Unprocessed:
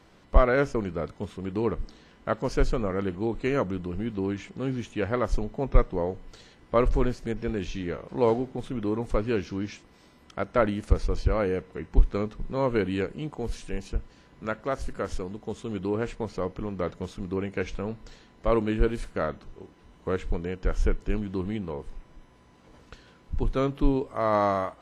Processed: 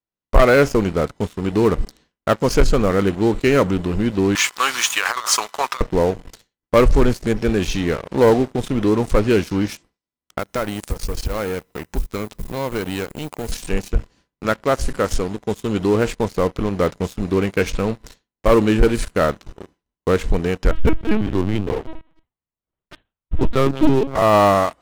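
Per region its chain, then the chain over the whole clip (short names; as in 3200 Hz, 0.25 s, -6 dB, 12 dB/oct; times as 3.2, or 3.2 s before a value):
4.35–5.81 resonant high-pass 1100 Hz, resonance Q 3.3 + high shelf 2300 Hz +11 dB + negative-ratio compressor -33 dBFS
10.39–13.52 G.711 law mismatch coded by A + high shelf 5800 Hz +10.5 dB + compressor 2.5:1, threshold -35 dBFS
20.71–24.22 echo 0.175 s -17.5 dB + LPC vocoder at 8 kHz pitch kept
whole clip: sample leveller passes 3; expander -41 dBFS; high shelf 5200 Hz +8 dB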